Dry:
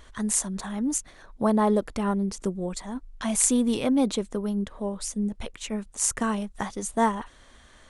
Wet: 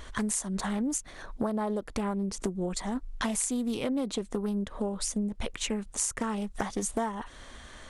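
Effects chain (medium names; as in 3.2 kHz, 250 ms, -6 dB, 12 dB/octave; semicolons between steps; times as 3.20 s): compression 12:1, threshold -33 dBFS, peak gain reduction 16.5 dB; loudspeaker Doppler distortion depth 0.28 ms; trim +6 dB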